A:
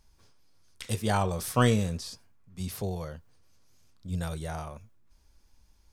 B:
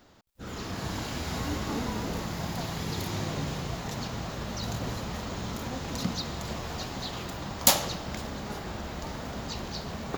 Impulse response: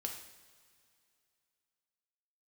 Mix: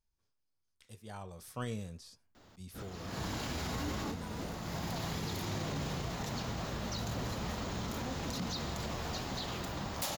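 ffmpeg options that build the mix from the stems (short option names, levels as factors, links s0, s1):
-filter_complex "[0:a]volume=0.2,afade=t=in:st=1:d=0.77:silence=0.398107,asplit=2[s0][s1];[1:a]aeval=exprs='0.2*(abs(mod(val(0)/0.2+3,4)-2)-1)':c=same,adelay=2350,volume=0.75[s2];[s1]apad=whole_len=552152[s3];[s2][s3]sidechaincompress=threshold=0.00282:ratio=12:attack=27:release=242[s4];[s0][s4]amix=inputs=2:normalize=0,alimiter=level_in=1.68:limit=0.0631:level=0:latency=1:release=25,volume=0.596"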